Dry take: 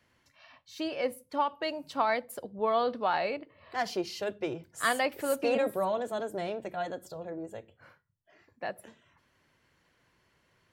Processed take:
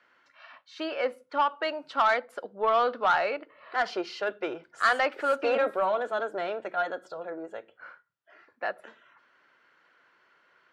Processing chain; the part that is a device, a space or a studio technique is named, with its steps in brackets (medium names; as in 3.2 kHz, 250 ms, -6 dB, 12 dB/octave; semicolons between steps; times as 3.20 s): intercom (band-pass 390–3700 Hz; peaking EQ 1.4 kHz +11 dB 0.41 oct; saturation -19 dBFS, distortion -15 dB); trim +4 dB